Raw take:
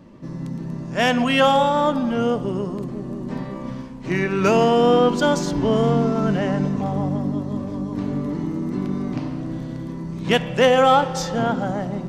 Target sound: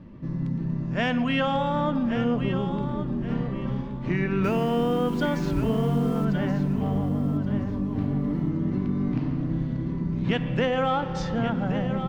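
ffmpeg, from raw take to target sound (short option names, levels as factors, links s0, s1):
-filter_complex "[0:a]lowpass=2100,equalizer=f=700:w=0.31:g=-13,acompressor=threshold=0.0355:ratio=4,asettb=1/sr,asplit=3[s0][s1][s2];[s0]atrim=end=4.444[s3];[s1]atrim=start=4.44:end=6.25,asetpts=PTS-STARTPTS,afade=t=in:d=0.004:c=qsin,afade=t=out:st=1.806:d=0.004:c=qsin,acrusher=bits=8:mix=0:aa=0.5[s4];[s2]atrim=start=6.246[s5];[s3][s4]acrossfade=d=0.004:c1=hsin:c2=qsin[s6];[s6][s5]acrossfade=d=0.004:c1=qsin:c2=hsin,asplit=2[s7][s8];[s8]aecho=0:1:1125|2250|3375:0.316|0.0854|0.0231[s9];[s7][s9]amix=inputs=2:normalize=0,volume=2.37"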